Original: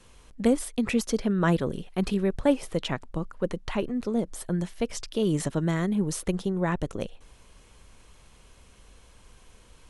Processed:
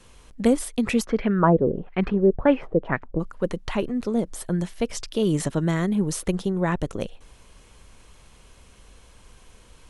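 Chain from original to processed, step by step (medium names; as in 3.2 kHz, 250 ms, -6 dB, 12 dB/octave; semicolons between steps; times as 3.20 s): 1.04–3.19 s: LFO low-pass sine 1 Hz -> 2.8 Hz 430–2300 Hz; trim +3 dB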